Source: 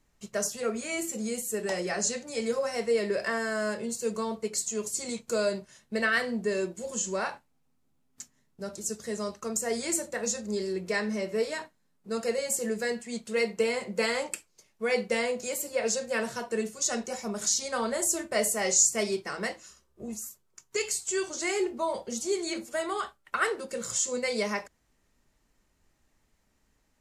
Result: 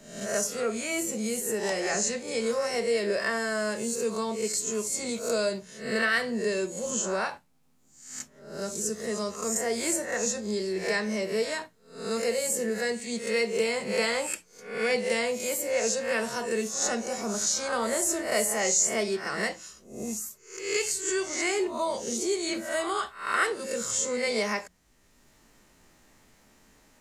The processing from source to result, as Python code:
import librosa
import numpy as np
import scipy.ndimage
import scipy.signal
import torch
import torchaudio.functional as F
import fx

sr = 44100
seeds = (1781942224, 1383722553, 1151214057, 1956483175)

y = fx.spec_swells(x, sr, rise_s=0.48)
y = fx.hum_notches(y, sr, base_hz=60, count=3)
y = fx.band_squash(y, sr, depth_pct=40)